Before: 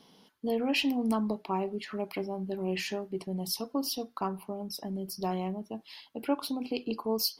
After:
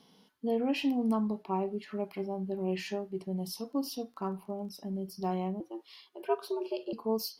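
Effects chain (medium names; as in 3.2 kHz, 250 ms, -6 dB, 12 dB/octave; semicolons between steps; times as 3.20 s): 3.68–4.73 s: crackle 42 per s -45 dBFS; harmonic-percussive split percussive -10 dB; 5.60–6.93 s: frequency shift +120 Hz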